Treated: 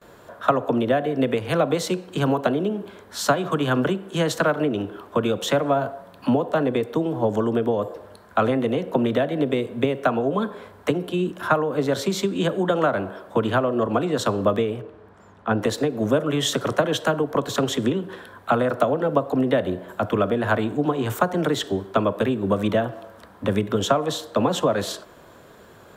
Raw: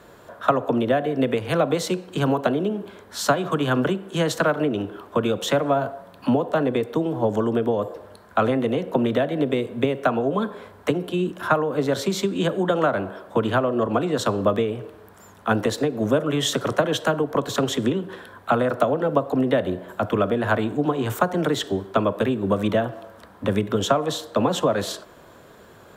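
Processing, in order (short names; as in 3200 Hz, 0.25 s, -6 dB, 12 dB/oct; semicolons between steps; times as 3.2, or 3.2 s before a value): gate with hold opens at -41 dBFS; 14.81–15.62 tape spacing loss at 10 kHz 20 dB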